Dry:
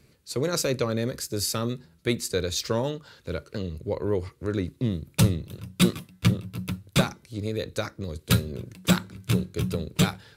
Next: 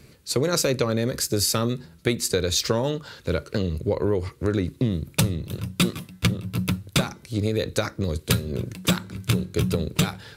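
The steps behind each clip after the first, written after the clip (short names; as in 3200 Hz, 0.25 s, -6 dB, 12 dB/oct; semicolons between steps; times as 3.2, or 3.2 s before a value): compressor 6:1, threshold -27 dBFS, peak gain reduction 12.5 dB; gain +8.5 dB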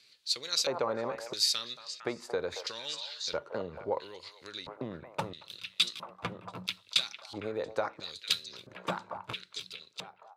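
ending faded out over 1.49 s; delay with a stepping band-pass 0.228 s, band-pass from 820 Hz, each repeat 1.4 oct, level -3.5 dB; LFO band-pass square 0.75 Hz 860–3900 Hz; gain +2 dB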